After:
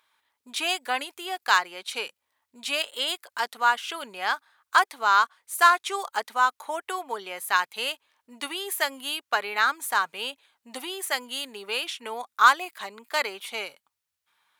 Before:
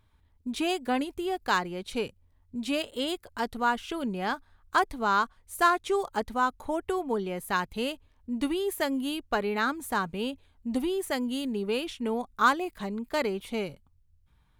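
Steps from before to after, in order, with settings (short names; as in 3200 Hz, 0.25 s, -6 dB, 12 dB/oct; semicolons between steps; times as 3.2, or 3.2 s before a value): HPF 1000 Hz 12 dB/oct; gain +7.5 dB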